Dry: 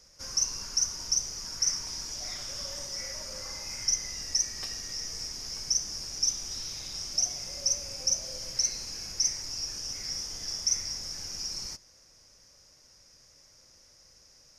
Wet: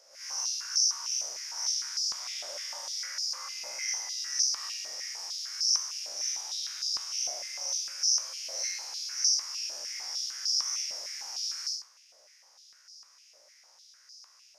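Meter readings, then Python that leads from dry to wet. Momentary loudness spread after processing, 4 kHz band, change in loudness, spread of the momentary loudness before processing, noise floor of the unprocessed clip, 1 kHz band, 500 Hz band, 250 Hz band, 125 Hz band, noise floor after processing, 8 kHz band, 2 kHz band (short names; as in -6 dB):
10 LU, +1.5 dB, 0.0 dB, 8 LU, -59 dBFS, +2.5 dB, -3.0 dB, under -15 dB, under -30 dB, -60 dBFS, -1.0 dB, +3.5 dB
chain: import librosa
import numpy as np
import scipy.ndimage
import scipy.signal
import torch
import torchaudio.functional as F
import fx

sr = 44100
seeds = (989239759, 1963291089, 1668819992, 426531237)

y = fx.spec_blur(x, sr, span_ms=135.0)
y = fx.doubler(y, sr, ms=15.0, db=-4.5)
y = fx.filter_held_highpass(y, sr, hz=6.6, low_hz=610.0, high_hz=4900.0)
y = y * librosa.db_to_amplitude(-1.5)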